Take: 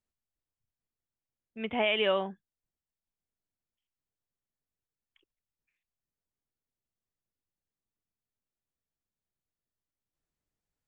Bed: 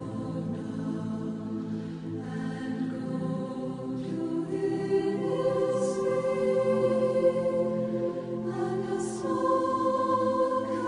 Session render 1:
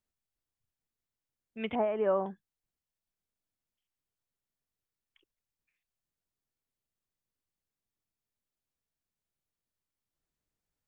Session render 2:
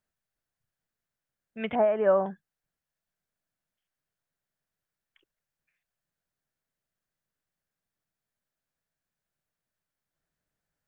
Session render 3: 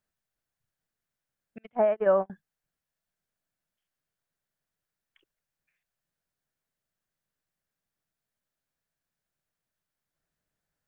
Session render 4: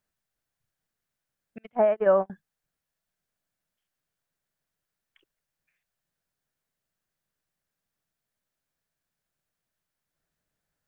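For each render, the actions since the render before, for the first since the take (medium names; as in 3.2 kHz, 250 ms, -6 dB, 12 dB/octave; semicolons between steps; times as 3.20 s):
1.75–2.26 s: low-pass 1.3 kHz 24 dB/octave
fifteen-band graphic EQ 160 Hz +7 dB, 630 Hz +7 dB, 1.6 kHz +9 dB
1.58–2.30 s: gate -27 dBFS, range -37 dB
trim +2 dB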